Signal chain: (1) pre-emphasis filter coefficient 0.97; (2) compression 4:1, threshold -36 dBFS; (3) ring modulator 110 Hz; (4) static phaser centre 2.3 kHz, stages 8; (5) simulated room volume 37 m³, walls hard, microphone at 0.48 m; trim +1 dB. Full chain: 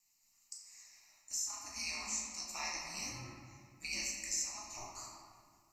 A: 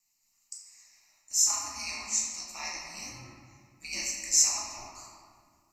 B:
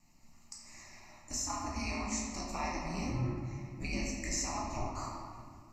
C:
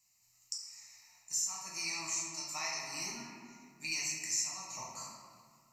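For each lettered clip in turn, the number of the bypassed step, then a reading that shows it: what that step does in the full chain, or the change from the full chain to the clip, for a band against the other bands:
2, crest factor change +2.5 dB; 1, 4 kHz band -13.5 dB; 3, 125 Hz band -4.0 dB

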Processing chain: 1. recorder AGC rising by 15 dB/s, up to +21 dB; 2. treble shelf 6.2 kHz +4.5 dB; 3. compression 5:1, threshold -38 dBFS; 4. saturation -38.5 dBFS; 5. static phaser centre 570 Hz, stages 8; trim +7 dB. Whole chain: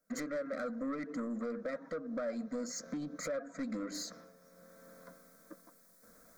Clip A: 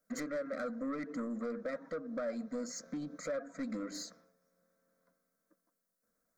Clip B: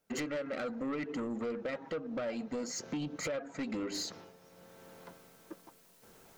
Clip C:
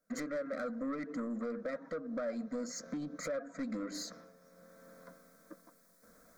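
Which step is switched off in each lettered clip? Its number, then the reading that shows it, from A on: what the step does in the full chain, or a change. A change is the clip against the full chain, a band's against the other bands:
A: 1, 8 kHz band -2.0 dB; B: 5, 4 kHz band +4.0 dB; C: 2, 8 kHz band -2.0 dB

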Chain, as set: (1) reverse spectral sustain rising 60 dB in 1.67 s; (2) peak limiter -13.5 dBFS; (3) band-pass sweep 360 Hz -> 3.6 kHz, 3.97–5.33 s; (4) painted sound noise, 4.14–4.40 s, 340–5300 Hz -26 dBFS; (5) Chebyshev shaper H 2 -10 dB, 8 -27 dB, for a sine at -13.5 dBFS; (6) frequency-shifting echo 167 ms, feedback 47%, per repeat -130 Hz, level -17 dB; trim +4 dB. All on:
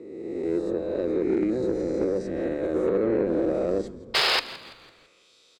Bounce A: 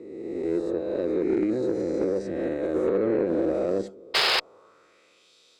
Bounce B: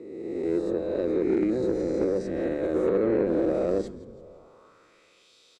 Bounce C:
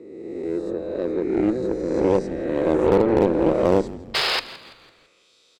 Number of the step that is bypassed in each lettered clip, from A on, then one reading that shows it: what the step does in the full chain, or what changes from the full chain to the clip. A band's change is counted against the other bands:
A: 6, echo-to-direct -16.0 dB to none; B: 4, 2 kHz band -12.0 dB; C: 2, mean gain reduction 2.0 dB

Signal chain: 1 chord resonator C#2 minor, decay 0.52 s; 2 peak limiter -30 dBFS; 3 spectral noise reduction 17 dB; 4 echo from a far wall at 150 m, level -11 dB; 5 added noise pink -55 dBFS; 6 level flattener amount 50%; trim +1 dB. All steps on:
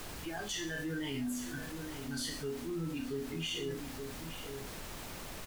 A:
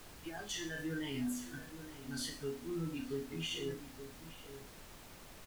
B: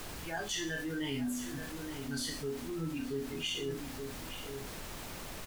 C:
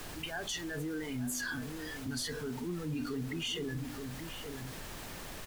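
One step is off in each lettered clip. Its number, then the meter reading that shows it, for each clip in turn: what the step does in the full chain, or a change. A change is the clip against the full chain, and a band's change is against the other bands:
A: 6, momentary loudness spread change +6 LU; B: 2, loudness change +1.0 LU; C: 1, 500 Hz band -2.0 dB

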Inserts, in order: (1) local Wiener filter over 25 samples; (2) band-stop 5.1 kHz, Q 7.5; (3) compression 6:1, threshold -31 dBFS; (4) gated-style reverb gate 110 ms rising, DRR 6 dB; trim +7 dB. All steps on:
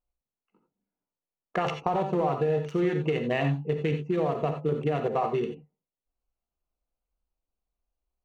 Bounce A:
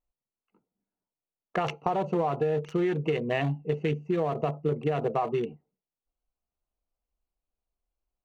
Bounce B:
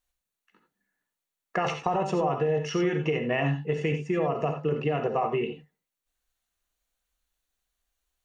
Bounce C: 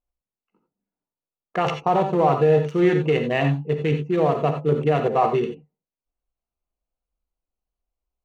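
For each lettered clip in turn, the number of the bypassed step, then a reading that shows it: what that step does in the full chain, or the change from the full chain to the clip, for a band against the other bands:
4, loudness change -1.0 LU; 1, 2 kHz band +3.0 dB; 3, crest factor change -2.5 dB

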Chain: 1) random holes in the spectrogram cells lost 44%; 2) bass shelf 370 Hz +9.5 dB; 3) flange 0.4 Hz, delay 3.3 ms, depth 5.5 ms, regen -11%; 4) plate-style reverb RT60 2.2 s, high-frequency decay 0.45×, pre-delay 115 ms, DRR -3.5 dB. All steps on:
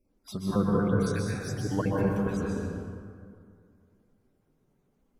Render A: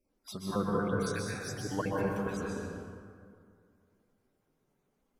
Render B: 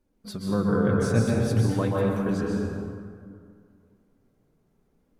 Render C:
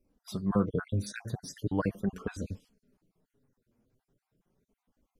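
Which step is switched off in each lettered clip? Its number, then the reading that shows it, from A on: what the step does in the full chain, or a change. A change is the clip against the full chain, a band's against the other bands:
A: 2, 125 Hz band -7.5 dB; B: 1, 125 Hz band +1.5 dB; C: 4, momentary loudness spread change -4 LU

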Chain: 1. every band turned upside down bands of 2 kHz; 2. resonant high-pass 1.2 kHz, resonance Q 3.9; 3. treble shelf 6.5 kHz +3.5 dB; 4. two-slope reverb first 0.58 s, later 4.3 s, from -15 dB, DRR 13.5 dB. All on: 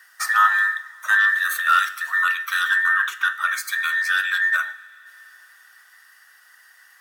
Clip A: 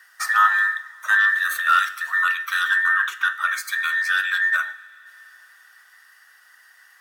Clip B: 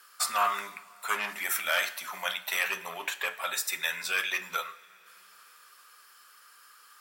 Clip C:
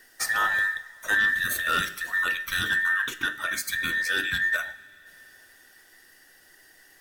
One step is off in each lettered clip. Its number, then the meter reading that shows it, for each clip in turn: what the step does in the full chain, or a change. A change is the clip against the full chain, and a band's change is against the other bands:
3, 8 kHz band -2.0 dB; 1, 2 kHz band -11.0 dB; 2, 1 kHz band -9.0 dB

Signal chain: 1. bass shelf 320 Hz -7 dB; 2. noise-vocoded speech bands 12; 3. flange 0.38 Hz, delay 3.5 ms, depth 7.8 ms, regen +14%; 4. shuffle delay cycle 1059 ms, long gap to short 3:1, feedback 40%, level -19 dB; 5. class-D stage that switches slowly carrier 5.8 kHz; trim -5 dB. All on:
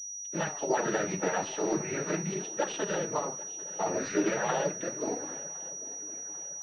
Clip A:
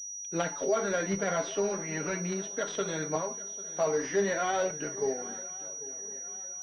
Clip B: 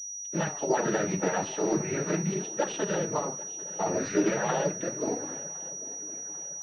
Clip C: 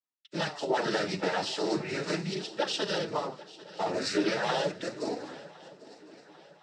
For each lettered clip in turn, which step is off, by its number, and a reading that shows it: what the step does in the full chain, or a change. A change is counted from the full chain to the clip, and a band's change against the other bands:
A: 2, 250 Hz band -2.0 dB; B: 1, 125 Hz band +4.0 dB; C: 5, 4 kHz band +10.0 dB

